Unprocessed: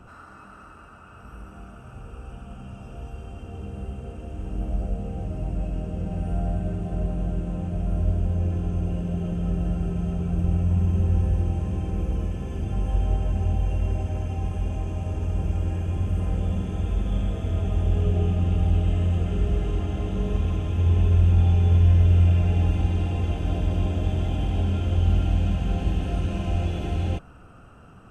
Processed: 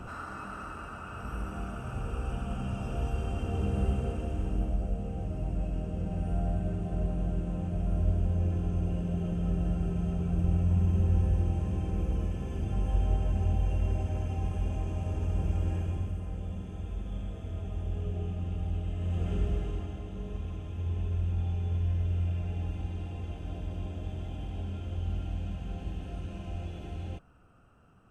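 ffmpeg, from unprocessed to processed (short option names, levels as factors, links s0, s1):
-af "volume=3.98,afade=t=out:st=3.91:d=0.86:silence=0.334965,afade=t=out:st=15.78:d=0.42:silence=0.421697,afade=t=in:st=18.97:d=0.35:silence=0.473151,afade=t=out:st=19.32:d=0.71:silence=0.421697"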